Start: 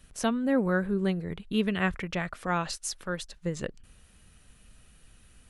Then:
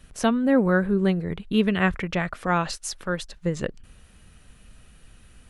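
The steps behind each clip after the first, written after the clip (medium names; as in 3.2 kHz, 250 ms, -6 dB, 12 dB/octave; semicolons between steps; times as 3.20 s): treble shelf 4.2 kHz -5.5 dB; trim +6 dB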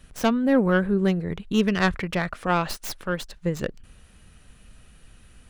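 tracing distortion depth 0.11 ms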